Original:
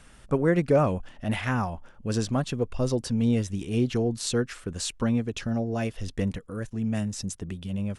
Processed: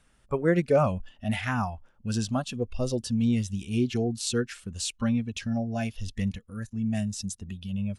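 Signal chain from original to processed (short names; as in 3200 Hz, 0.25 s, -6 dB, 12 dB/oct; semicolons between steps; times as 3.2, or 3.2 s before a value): spectral noise reduction 12 dB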